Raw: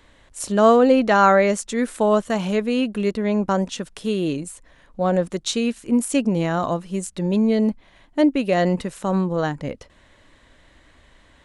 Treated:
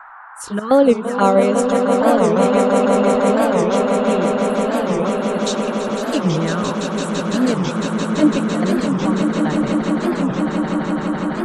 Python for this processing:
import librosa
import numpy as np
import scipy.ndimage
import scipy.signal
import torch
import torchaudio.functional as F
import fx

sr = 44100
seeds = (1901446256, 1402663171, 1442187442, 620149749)

p1 = fx.level_steps(x, sr, step_db=14)
p2 = x + F.gain(torch.from_numpy(p1), -0.5).numpy()
p3 = fx.step_gate(p2, sr, bpm=127, pattern='x..xx.xx..xxxx', floor_db=-12.0, edge_ms=4.5)
p4 = fx.env_flanger(p3, sr, rest_ms=4.0, full_db=-11.0)
p5 = fx.noise_reduce_blind(p4, sr, reduce_db=19)
p6 = fx.dmg_noise_band(p5, sr, seeds[0], low_hz=770.0, high_hz=1600.0, level_db=-38.0)
p7 = p6 + fx.echo_swell(p6, sr, ms=168, loudest=8, wet_db=-7.5, dry=0)
p8 = fx.record_warp(p7, sr, rpm=45.0, depth_cents=250.0)
y = F.gain(torch.from_numpy(p8), -1.0).numpy()